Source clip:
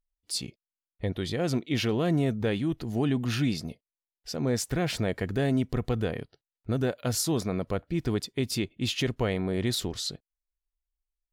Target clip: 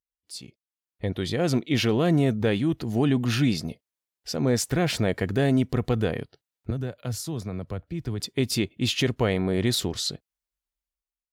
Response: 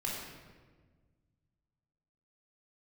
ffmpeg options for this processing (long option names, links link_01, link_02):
-filter_complex "[0:a]dynaudnorm=framelen=370:gausssize=5:maxgain=14dB,highpass=55,asettb=1/sr,asplit=3[link_01][link_02][link_03];[link_01]atrim=end=6.704[link_04];[link_02]atrim=start=6.7:end=8.2,asetpts=PTS-STARTPTS,afade=type=in:duration=0.004:curve=qsin,afade=type=out:start_time=1.496:duration=0.004:curve=qsin,acrossover=split=130[link_05][link_06];[link_06]acompressor=threshold=-33dB:ratio=2[link_07];[link_05][link_07]amix=inputs=2:normalize=0[link_08];[link_03]atrim=start=8.196[link_09];[link_04][link_08]acrossfade=duration=0.004:curve1=hsin:curve2=qsin[link_10];[link_10][link_09]acrossfade=duration=0.004:curve1=qsin:curve2=hsin,volume=-8dB"